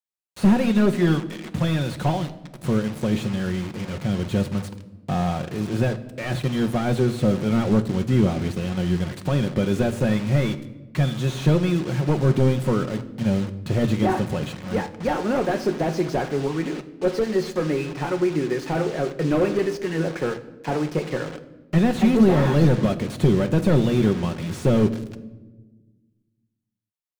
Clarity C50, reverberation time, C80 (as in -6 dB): 14.5 dB, 1.2 s, 16.5 dB